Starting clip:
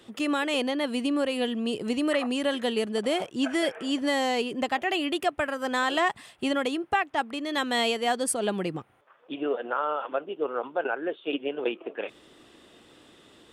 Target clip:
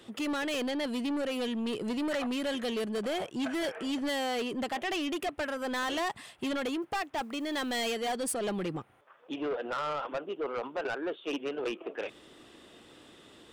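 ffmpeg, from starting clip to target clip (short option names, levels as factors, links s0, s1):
-filter_complex "[0:a]asoftclip=type=tanh:threshold=0.0376,asettb=1/sr,asplit=3[s0][s1][s2];[s0]atrim=end=6.824[s3];[s1]atrim=start=6.82:end=7.84,asetpts=PTS-STARTPTS,afade=t=in:d=0.004:c=qsin,afade=t=out:st=1.016:d=0.004:c=qsin,acrusher=bits=8:mode=log:mix=0:aa=0.000001[s4];[s2]atrim=start=7.836[s5];[s3][s4]acrossfade=d=0.004:c1=hsin:c2=qsin[s6];[s6][s5]acrossfade=d=0.004:c1=qsin:c2=hsin"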